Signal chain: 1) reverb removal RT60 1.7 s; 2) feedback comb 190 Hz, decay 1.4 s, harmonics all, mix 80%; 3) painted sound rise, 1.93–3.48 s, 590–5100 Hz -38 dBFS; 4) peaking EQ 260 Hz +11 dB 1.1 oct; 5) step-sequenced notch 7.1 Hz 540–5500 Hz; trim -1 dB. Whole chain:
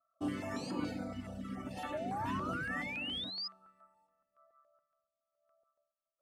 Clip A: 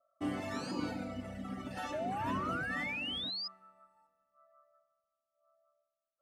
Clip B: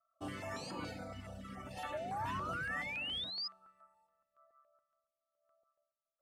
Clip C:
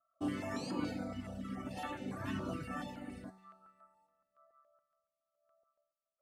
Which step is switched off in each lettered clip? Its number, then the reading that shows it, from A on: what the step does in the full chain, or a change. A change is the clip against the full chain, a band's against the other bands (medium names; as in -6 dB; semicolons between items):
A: 5, momentary loudness spread change +1 LU; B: 4, 250 Hz band -8.5 dB; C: 3, 4 kHz band -10.5 dB